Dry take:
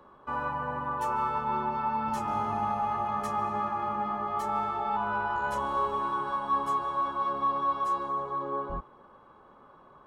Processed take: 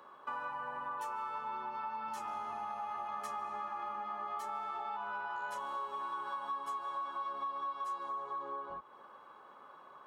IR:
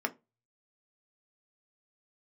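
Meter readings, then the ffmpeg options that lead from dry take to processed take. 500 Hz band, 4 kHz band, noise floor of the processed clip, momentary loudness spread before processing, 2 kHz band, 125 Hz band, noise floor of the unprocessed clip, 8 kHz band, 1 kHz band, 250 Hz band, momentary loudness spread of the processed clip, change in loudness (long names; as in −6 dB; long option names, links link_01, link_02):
−12.5 dB, −6.0 dB, −56 dBFS, 4 LU, −7.5 dB, below −20 dB, −56 dBFS, can't be measured, −9.5 dB, −18.5 dB, 9 LU, −9.5 dB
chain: -af "acompressor=threshold=-38dB:ratio=6,highpass=frequency=1100:poles=1,volume=4dB"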